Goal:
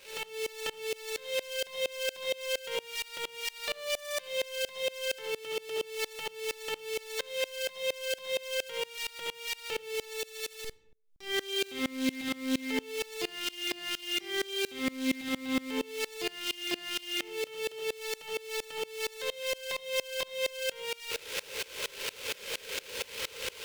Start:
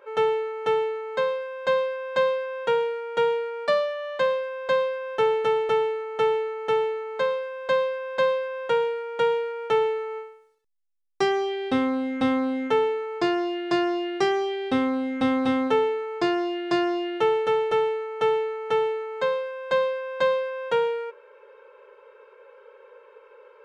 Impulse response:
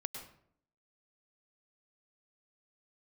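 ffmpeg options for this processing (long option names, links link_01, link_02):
-filter_complex "[0:a]aeval=exprs='val(0)+0.5*0.0562*sgn(val(0))':channel_layout=same,alimiter=limit=-19.5dB:level=0:latency=1,highshelf=frequency=1800:width_type=q:width=1.5:gain=11[link_01];[1:a]atrim=start_sample=2205,asetrate=66150,aresample=44100[link_02];[link_01][link_02]afir=irnorm=-1:irlink=0,aeval=exprs='val(0)*pow(10,-25*if(lt(mod(-4.3*n/s,1),2*abs(-4.3)/1000),1-mod(-4.3*n/s,1)/(2*abs(-4.3)/1000),(mod(-4.3*n/s,1)-2*abs(-4.3)/1000)/(1-2*abs(-4.3)/1000))/20)':channel_layout=same,volume=-1dB"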